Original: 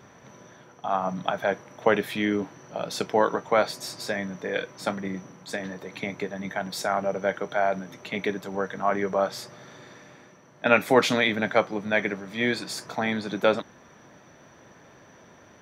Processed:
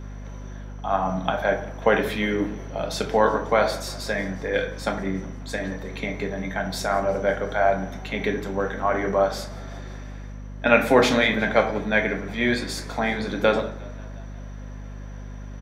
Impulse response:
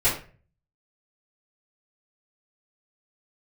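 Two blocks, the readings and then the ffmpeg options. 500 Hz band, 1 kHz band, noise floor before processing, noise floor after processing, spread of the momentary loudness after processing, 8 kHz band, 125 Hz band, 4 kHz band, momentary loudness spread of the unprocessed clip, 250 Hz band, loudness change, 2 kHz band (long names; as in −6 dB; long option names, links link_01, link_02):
+3.0 dB, +2.5 dB, −53 dBFS, −36 dBFS, 19 LU, +1.5 dB, +6.0 dB, +2.0 dB, 12 LU, +3.0 dB, +3.0 dB, +3.0 dB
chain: -filter_complex "[0:a]asplit=6[link_01][link_02][link_03][link_04][link_05][link_06];[link_02]adelay=179,afreqshift=32,volume=-22dB[link_07];[link_03]adelay=358,afreqshift=64,volume=-26dB[link_08];[link_04]adelay=537,afreqshift=96,volume=-30dB[link_09];[link_05]adelay=716,afreqshift=128,volume=-34dB[link_10];[link_06]adelay=895,afreqshift=160,volume=-38.1dB[link_11];[link_01][link_07][link_08][link_09][link_10][link_11]amix=inputs=6:normalize=0,asplit=2[link_12][link_13];[1:a]atrim=start_sample=2205,asetrate=32193,aresample=44100,highshelf=frequency=10000:gain=-9.5[link_14];[link_13][link_14]afir=irnorm=-1:irlink=0,volume=-18dB[link_15];[link_12][link_15]amix=inputs=2:normalize=0,aeval=exprs='val(0)+0.0178*(sin(2*PI*50*n/s)+sin(2*PI*2*50*n/s)/2+sin(2*PI*3*50*n/s)/3+sin(2*PI*4*50*n/s)/4+sin(2*PI*5*50*n/s)/5)':channel_layout=same"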